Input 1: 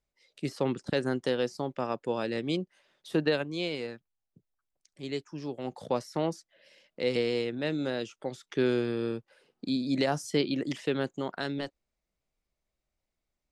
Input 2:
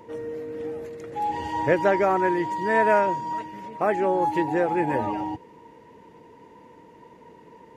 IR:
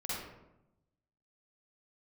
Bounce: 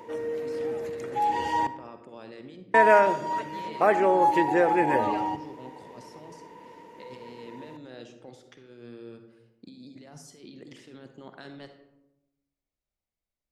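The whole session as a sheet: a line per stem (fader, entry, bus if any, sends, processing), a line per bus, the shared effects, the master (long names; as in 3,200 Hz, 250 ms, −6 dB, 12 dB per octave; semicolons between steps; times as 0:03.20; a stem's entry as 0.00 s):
−14.0 dB, 0.00 s, send −7.5 dB, compressor whose output falls as the input rises −34 dBFS, ratio −1
+2.5 dB, 0.00 s, muted 0:01.67–0:02.74, send −15.5 dB, low-shelf EQ 210 Hz −11.5 dB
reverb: on, RT60 0.90 s, pre-delay 43 ms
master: no processing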